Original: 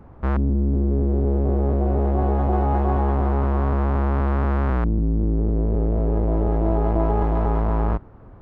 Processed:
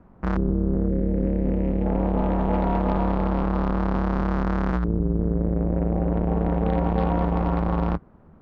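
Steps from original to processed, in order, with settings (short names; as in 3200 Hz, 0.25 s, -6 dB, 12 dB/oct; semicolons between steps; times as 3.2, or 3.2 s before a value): added harmonics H 5 -23 dB, 7 -20 dB, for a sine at -9 dBFS; 0.88–1.86 band shelf 880 Hz -9 dB; ring modulator 120 Hz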